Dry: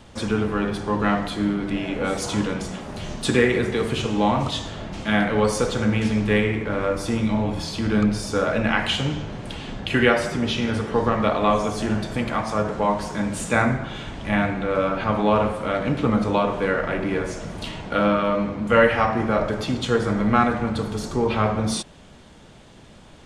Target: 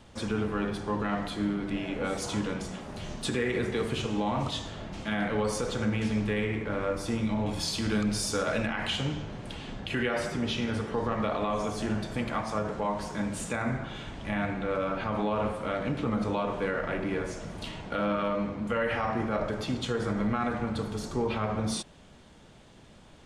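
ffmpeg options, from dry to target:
-filter_complex "[0:a]alimiter=limit=-13dB:level=0:latency=1:release=57,asettb=1/sr,asplit=3[a][b][c];[a]atrim=end=7.464[d];[b]atrim=start=7.46:end=8.67,asetpts=PTS-STARTPTS,afade=t=in:d=0.004:c=qsin,afade=t=out:st=1.206:d=0.004:c=qsin,highshelf=f=3.3k:g=11[e];[c]atrim=start=8.666[f];[d][e]acrossfade=d=0.004:c1=hsin:c2=qsin[g];[g][f]acrossfade=d=0.004:c1=qsin:c2=hsin,volume=-6.5dB"

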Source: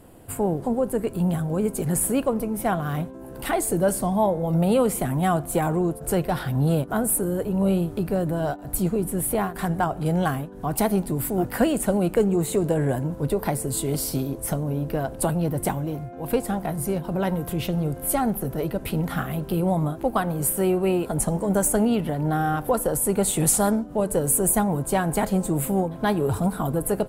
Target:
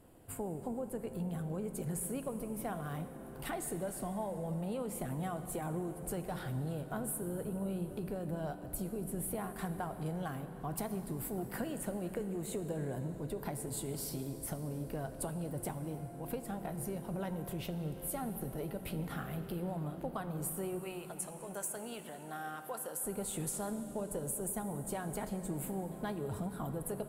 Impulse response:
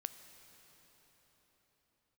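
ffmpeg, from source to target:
-filter_complex "[0:a]asettb=1/sr,asplit=3[a][b][c];[a]atrim=end=20.794[d];[b]atrim=start=20.79:end=23.04,asetpts=PTS-STARTPTS,afade=t=in:d=0.004:c=qsin,afade=t=out:st=2.246:d=0.004:c=qsin,highpass=f=1.3k:p=1[e];[c]atrim=start=23.036[f];[d][e]acrossfade=d=0.004:c1=hsin:c2=qsin[g];[g][f]acrossfade=d=0.004:c1=qsin:c2=hsin,acompressor=threshold=-24dB:ratio=6[h];[1:a]atrim=start_sample=2205[i];[h][i]afir=irnorm=-1:irlink=0,volume=-8.5dB"

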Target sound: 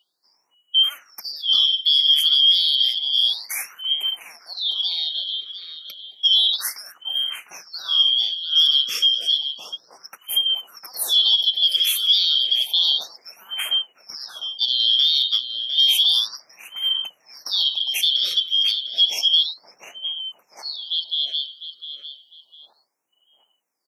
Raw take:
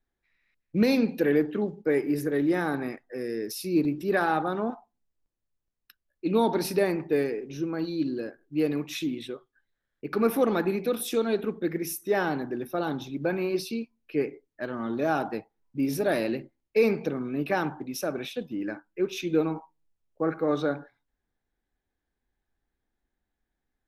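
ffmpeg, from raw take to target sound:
-filter_complex "[0:a]afftfilt=real='real(if(lt(b,272),68*(eq(floor(b/68),0)*2+eq(floor(b/68),1)*3+eq(floor(b/68),2)*0+eq(floor(b/68),3)*1)+mod(b,68),b),0)':imag='imag(if(lt(b,272),68*(eq(floor(b/68),0)*2+eq(floor(b/68),1)*3+eq(floor(b/68),2)*0+eq(floor(b/68),3)*1)+mod(b,68),b),0)':win_size=2048:overlap=0.75,adynamicequalizer=threshold=0.00891:dfrequency=7300:dqfactor=0.82:tfrequency=7300:tqfactor=0.82:attack=5:release=100:ratio=0.375:range=3:mode=cutabove:tftype=bell,acrossover=split=160|1800[a][b][c];[a]acrusher=bits=4:mix=0:aa=0.5[d];[b]acompressor=threshold=-55dB:ratio=12[e];[d][e][c]amix=inputs=3:normalize=0,asplit=2[f][g];[g]adelay=703,lowpass=f=2k:p=1,volume=-4.5dB,asplit=2[h][i];[i]adelay=703,lowpass=f=2k:p=1,volume=0.52,asplit=2[j][k];[k]adelay=703,lowpass=f=2k:p=1,volume=0.52,asplit=2[l][m];[m]adelay=703,lowpass=f=2k:p=1,volume=0.52,asplit=2[n][o];[o]adelay=703,lowpass=f=2k:p=1,volume=0.52,asplit=2[p][q];[q]adelay=703,lowpass=f=2k:p=1,volume=0.52,asplit=2[r][s];[s]adelay=703,lowpass=f=2k:p=1,volume=0.52[t];[f][h][j][l][n][p][r][t]amix=inputs=8:normalize=0,alimiter=level_in=20.5dB:limit=-1dB:release=50:level=0:latency=1,afftfilt=real='re*(1-between(b*sr/1024,770*pow(4600/770,0.5+0.5*sin(2*PI*0.31*pts/sr))/1.41,770*pow(4600/770,0.5+0.5*sin(2*PI*0.31*pts/sr))*1.41))':imag='im*(1-between(b*sr/1024,770*pow(4600/770,0.5+0.5*sin(2*PI*0.31*pts/sr))/1.41,770*pow(4600/770,0.5+0.5*sin(2*PI*0.31*pts/sr))*1.41))':win_size=1024:overlap=0.75,volume=-7.5dB"

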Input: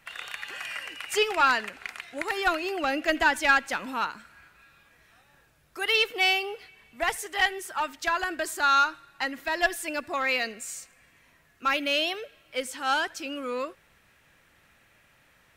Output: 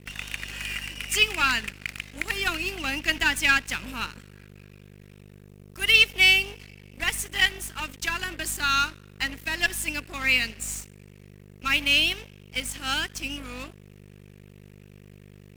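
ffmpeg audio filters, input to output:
-filter_complex "[0:a]acrossover=split=330|4300[a][b][c];[a]asoftclip=type=tanh:threshold=-39.5dB[d];[b]bandpass=f=2.7k:t=q:w=2.2:csg=0[e];[d][e][c]amix=inputs=3:normalize=0,aeval=exprs='val(0)+0.00562*(sin(2*PI*50*n/s)+sin(2*PI*2*50*n/s)/2+sin(2*PI*3*50*n/s)/3+sin(2*PI*4*50*n/s)/4+sin(2*PI*5*50*n/s)/5)':c=same,aeval=exprs='sgn(val(0))*max(abs(val(0))-0.00531,0)':c=same,volume=8.5dB"

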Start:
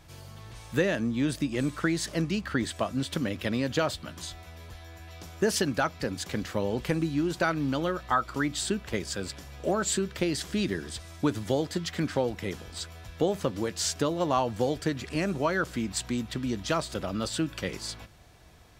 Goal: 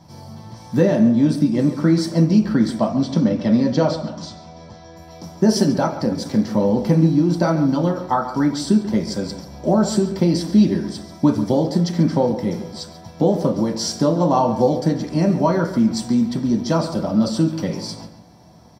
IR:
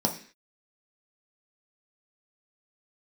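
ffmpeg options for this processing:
-filter_complex "[0:a]asettb=1/sr,asplit=3[a][b][c];[a]atrim=end=2.784[d];[b]atrim=start=2.78:end=4.96,asetpts=PTS-STARTPTS,afade=t=in:d=0.004:c=qsin,afade=t=out:st=2.176:d=0.004:c=qsin,lowpass=f=7k:w=0.5412,lowpass=f=7k:w=1.3066[e];[c]atrim=start=4.956[f];[d][e]acrossfade=d=0.004:c1=hsin:c2=qsin[g];[g][f]acrossfade=d=0.004:c1=qsin:c2=hsin,asplit=2[h][i];[i]adelay=138,lowpass=f=3.8k:p=1,volume=-11.5dB,asplit=2[j][k];[k]adelay=138,lowpass=f=3.8k:p=1,volume=0.38,asplit=2[l][m];[m]adelay=138,lowpass=f=3.8k:p=1,volume=0.38,asplit=2[n][o];[o]adelay=138,lowpass=f=3.8k:p=1,volume=0.38[p];[h][j][l][n][p]amix=inputs=5:normalize=0[q];[1:a]atrim=start_sample=2205,atrim=end_sample=4410[r];[q][r]afir=irnorm=-1:irlink=0,volume=-4.5dB"

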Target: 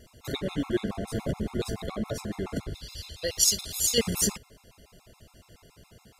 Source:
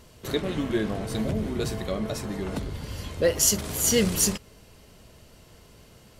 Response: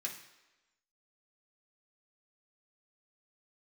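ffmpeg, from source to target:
-filter_complex "[0:a]asettb=1/sr,asplit=3[a][b][c];[a]atrim=end=1.164[d];[b]atrim=start=1.16:end=1.94,asetpts=PTS-STARTPTS,afade=t=in:d=0.004:c=qsin,afade=t=out:st=0.776:d=0.004:c=qsin,aeval=exprs='0.158*(cos(1*acos(clip(val(0)/0.158,-1,1)))-cos(1*PI/2))+0.00794*(cos(6*acos(clip(val(0)/0.158,-1,1)))-cos(6*PI/2))':c=same[e];[c]atrim=start=1.936[f];[d][e]acrossfade=d=0.004:c1=hsin:c2=qsin[g];[g][f]acrossfade=d=0.004:c1=qsin:c2=hsin,asettb=1/sr,asplit=3[h][i][j];[h]atrim=end=2.744[k];[i]atrim=start=2.74:end=3.98,asetpts=PTS-STARTPTS,afade=t=in:d=0.004:c=qsin,afade=t=out:st=1.236:d=0.004:c=qsin,equalizer=f=125:t=o:w=1:g=-9,equalizer=f=250:t=o:w=1:g=-10,equalizer=f=500:t=o:w=1:g=-6,equalizer=f=1k:t=o:w=1:g=-9,equalizer=f=2k:t=o:w=1:g=-5,equalizer=f=4k:t=o:w=1:g=10[l];[j]atrim=start=3.976[m];[k][l]acrossfade=d=0.004:c1=hsin:c2=qsin[n];[n][m]acrossfade=d=0.004:c1=qsin:c2=hsin,afftfilt=real='re*gt(sin(2*PI*7.1*pts/sr)*(1-2*mod(floor(b*sr/1024/690),2)),0)':imag='im*gt(sin(2*PI*7.1*pts/sr)*(1-2*mod(floor(b*sr/1024/690),2)),0)':win_size=1024:overlap=0.75"

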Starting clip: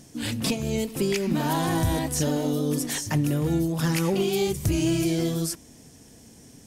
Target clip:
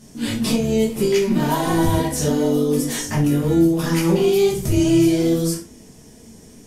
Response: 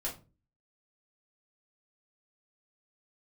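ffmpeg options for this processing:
-filter_complex "[1:a]atrim=start_sample=2205,atrim=end_sample=4410,asetrate=29988,aresample=44100[a];[0:a][a]afir=irnorm=-1:irlink=0"

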